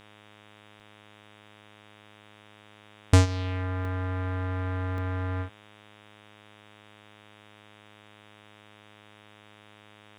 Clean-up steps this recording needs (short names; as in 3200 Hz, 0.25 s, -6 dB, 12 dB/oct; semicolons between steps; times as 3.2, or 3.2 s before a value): de-hum 105 Hz, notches 36; interpolate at 0.8/3.85/4.98, 1.3 ms; expander -46 dBFS, range -21 dB